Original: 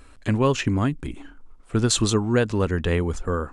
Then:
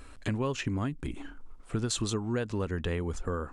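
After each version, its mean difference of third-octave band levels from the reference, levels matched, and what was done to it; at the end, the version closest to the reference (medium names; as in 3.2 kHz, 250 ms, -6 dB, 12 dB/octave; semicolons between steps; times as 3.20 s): 2.5 dB: compression 3:1, threshold -31 dBFS, peak gain reduction 12 dB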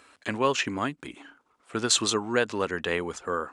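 5.0 dB: frequency weighting A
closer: first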